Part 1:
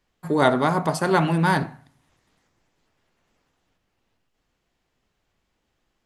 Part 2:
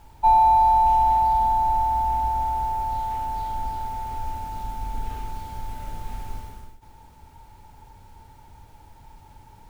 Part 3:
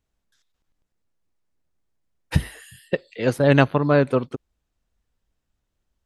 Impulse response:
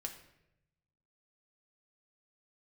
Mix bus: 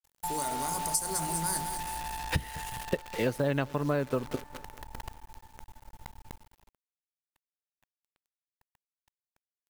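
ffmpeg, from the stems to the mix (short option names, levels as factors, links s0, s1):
-filter_complex "[0:a]bandreject=f=60:t=h:w=6,bandreject=f=120:t=h:w=6,bandreject=f=180:t=h:w=6,bandreject=f=240:t=h:w=6,bandreject=f=300:t=h:w=6,bandreject=f=360:t=h:w=6,bandreject=f=420:t=h:w=6,alimiter=limit=0.237:level=0:latency=1,aexciter=amount=14.9:drive=9:freq=5200,volume=0.168,asplit=2[s0][s1];[s1]volume=0.299[s2];[1:a]agate=range=0.398:threshold=0.0178:ratio=16:detection=peak,acompressor=threshold=0.112:ratio=6,volume=0.188[s3];[2:a]volume=1,asplit=2[s4][s5];[s5]volume=0.0631[s6];[s2][s6]amix=inputs=2:normalize=0,aecho=0:1:203|406|609|812|1015|1218|1421:1|0.5|0.25|0.125|0.0625|0.0312|0.0156[s7];[s0][s3][s4][s7]amix=inputs=4:normalize=0,acrusher=bits=7:dc=4:mix=0:aa=0.000001,acompressor=threshold=0.0562:ratio=12"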